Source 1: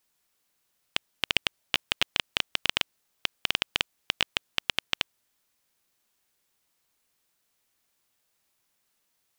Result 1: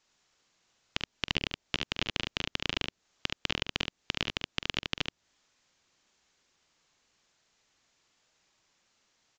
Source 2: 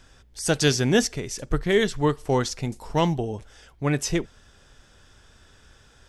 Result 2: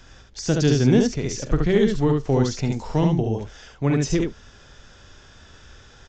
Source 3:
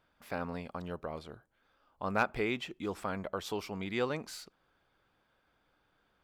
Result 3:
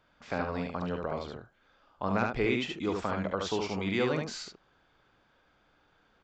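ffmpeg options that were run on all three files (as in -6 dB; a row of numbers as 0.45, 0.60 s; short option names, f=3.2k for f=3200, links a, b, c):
-filter_complex "[0:a]acrossover=split=400[a][b];[b]acompressor=threshold=-34dB:ratio=5[c];[a][c]amix=inputs=2:normalize=0,asplit=2[d][e];[e]aeval=exprs='clip(val(0),-1,0.0841)':c=same,volume=-3dB[f];[d][f]amix=inputs=2:normalize=0,aecho=1:1:45|72:0.266|0.668,aresample=16000,aresample=44100"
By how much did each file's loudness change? -4.5, +3.0, +4.5 LU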